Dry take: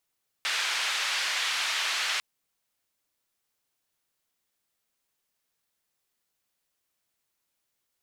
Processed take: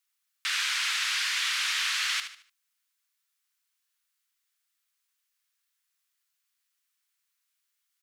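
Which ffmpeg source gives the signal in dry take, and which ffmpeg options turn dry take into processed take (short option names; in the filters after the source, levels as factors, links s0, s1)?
-f lavfi -i "anoisesrc=c=white:d=1.75:r=44100:seed=1,highpass=f=1300,lowpass=f=3700,volume=-14.9dB"
-filter_complex "[0:a]highpass=f=1200:w=0.5412,highpass=f=1200:w=1.3066,asplit=2[s0][s1];[s1]aecho=0:1:74|148|222|296:0.335|0.117|0.041|0.0144[s2];[s0][s2]amix=inputs=2:normalize=0"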